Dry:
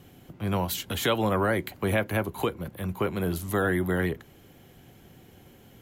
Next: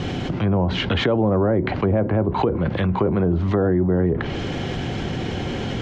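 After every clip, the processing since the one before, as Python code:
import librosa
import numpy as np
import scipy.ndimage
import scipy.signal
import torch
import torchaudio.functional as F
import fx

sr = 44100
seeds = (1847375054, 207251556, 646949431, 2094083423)

y = fx.env_lowpass_down(x, sr, base_hz=640.0, full_db=-23.5)
y = scipy.signal.sosfilt(scipy.signal.butter(4, 5500.0, 'lowpass', fs=sr, output='sos'), y)
y = fx.env_flatten(y, sr, amount_pct=70)
y = y * 10.0 ** (6.5 / 20.0)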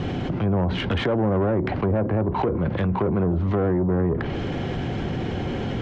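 y = fx.high_shelf(x, sr, hz=3100.0, db=-10.5)
y = 10.0 ** (-15.5 / 20.0) * np.tanh(y / 10.0 ** (-15.5 / 20.0))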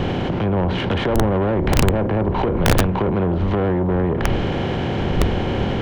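y = fx.bin_compress(x, sr, power=0.6)
y = fx.dmg_wind(y, sr, seeds[0], corner_hz=87.0, level_db=-24.0)
y = (np.mod(10.0 ** (8.0 / 20.0) * y + 1.0, 2.0) - 1.0) / 10.0 ** (8.0 / 20.0)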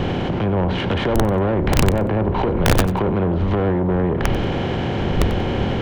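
y = fx.echo_feedback(x, sr, ms=93, feedback_pct=24, wet_db=-16)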